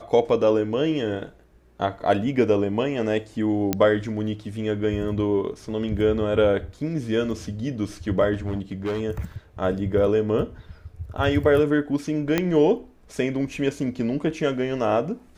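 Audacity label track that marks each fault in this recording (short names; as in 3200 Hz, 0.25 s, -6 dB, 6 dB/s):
3.730000	3.730000	pop -7 dBFS
8.330000	9.010000	clipped -22.5 dBFS
12.380000	12.380000	pop -7 dBFS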